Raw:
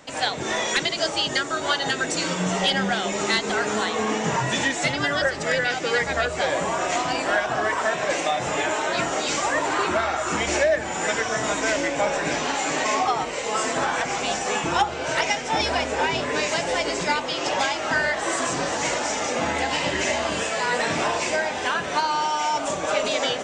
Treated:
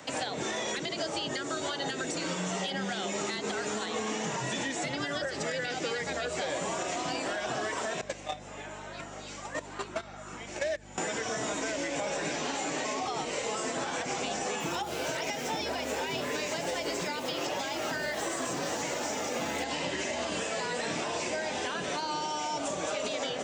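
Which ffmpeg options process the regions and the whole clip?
-filter_complex "[0:a]asettb=1/sr,asplit=3[s0][s1][s2];[s0]atrim=end=8.014[s3];[s1]atrim=start=8.01:end=10.98,asetpts=PTS-STARTPTS,afade=t=in:d=0.004:c=qsin,afade=t=out:st=2.966:d=0.004:c=qsin,agate=range=0.0501:threshold=0.1:ratio=16:release=100:detection=peak,aeval=exprs='val(0)+0.00316*(sin(2*PI*50*n/s)+sin(2*PI*2*50*n/s)/2+sin(2*PI*3*50*n/s)/3+sin(2*PI*4*50*n/s)/4+sin(2*PI*5*50*n/s)/5)':c=same,acontrast=50[s4];[s2]atrim=start=10.976[s5];[s3][s4]acrossfade=d=0.004:c1=hsin:c2=qsin[s6];[s6][s5]acrossfade=d=0.004:c1=qsin:c2=hsin,asettb=1/sr,asplit=3[s7][s8][s9];[s7]atrim=end=14.604[s10];[s8]atrim=start=14.6:end=19.64,asetpts=PTS-STARTPTS,afade=t=in:d=0.004:c=qsin,afade=t=out:st=5.036:d=0.004:c=qsin,aeval=exprs='val(0)*gte(abs(val(0)),0.0141)':c=same,highpass=44[s11];[s9]atrim=start=19.636[s12];[s10][s11]acrossfade=d=0.004:c1=hsin:c2=qsin[s13];[s13][s12]acrossfade=d=0.004:c1=qsin:c2=hsin,alimiter=limit=0.15:level=0:latency=1:release=94,highpass=62,acrossover=split=140|600|2700[s14][s15][s16][s17];[s14]acompressor=threshold=0.00158:ratio=4[s18];[s15]acompressor=threshold=0.0141:ratio=4[s19];[s16]acompressor=threshold=0.00891:ratio=4[s20];[s17]acompressor=threshold=0.01:ratio=4[s21];[s18][s19][s20][s21]amix=inputs=4:normalize=0,volume=1.19"

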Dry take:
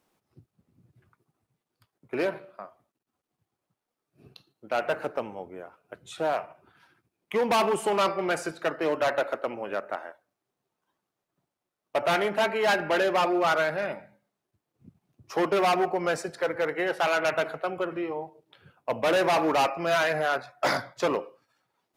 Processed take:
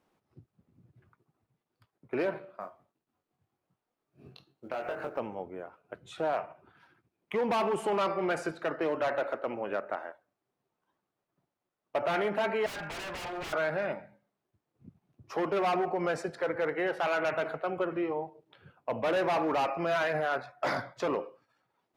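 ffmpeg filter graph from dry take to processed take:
-filter_complex "[0:a]asettb=1/sr,asplit=3[s0][s1][s2];[s0]atrim=end=2.604[s3];[s1]atrim=start=2.6:end=5.18,asetpts=PTS-STARTPTS,afade=t=in:d=0.004:c=qsin,afade=t=out:st=2.576:d=0.004:c=qsin,acompressor=threshold=0.0282:ratio=12:attack=3.2:release=140:knee=1:detection=peak,acrusher=bits=7:mode=log:mix=0:aa=0.000001,asplit=2[s4][s5];[s5]adelay=22,volume=0.596[s6];[s4][s6]amix=inputs=2:normalize=0,atrim=end_sample=113778[s7];[s2]atrim=start=5.176[s8];[s3][s7]acrossfade=d=0.004:c1=hsin:c2=qsin[s9];[s9][s8]acrossfade=d=0.004:c1=qsin:c2=hsin,asettb=1/sr,asplit=3[s10][s11][s12];[s10]atrim=end=12.664[s13];[s11]atrim=start=12.66:end=13.53,asetpts=PTS-STARTPTS,afade=t=in:d=0.004:c=qsin,afade=t=out:st=0.866:d=0.004:c=qsin,equalizer=f=370:w=1:g=-13.5,aeval=exprs='0.0251*(abs(mod(val(0)/0.0251+3,4)-2)-1)':c=same[s14];[s12]atrim=start=13.526[s15];[s13][s14]acrossfade=d=0.004:c1=hsin:c2=qsin[s16];[s16][s15]acrossfade=d=0.004:c1=qsin:c2=hsin,highshelf=f=4300:g=-11.5,alimiter=limit=0.0794:level=0:latency=1:release=34"

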